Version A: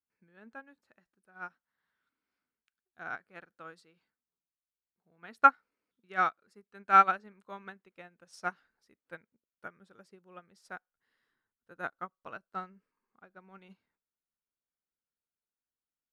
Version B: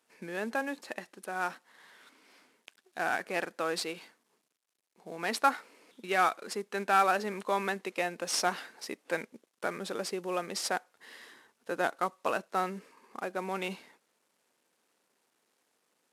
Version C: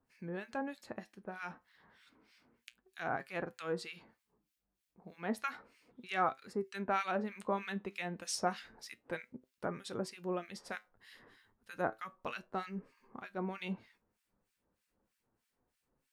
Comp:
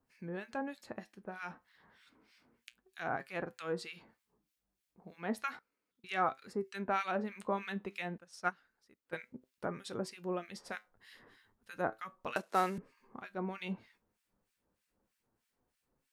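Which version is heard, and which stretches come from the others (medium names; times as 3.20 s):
C
5.59–6.04 s: from A
8.18–9.13 s: from A
12.36–12.78 s: from B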